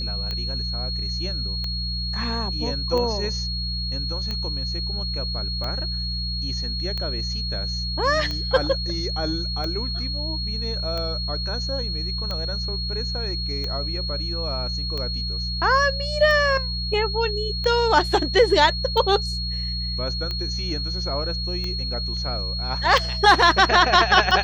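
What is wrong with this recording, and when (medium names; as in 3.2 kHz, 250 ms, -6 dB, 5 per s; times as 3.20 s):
hum 60 Hz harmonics 3 -29 dBFS
tick 45 rpm -16 dBFS
whine 4.3 kHz -28 dBFS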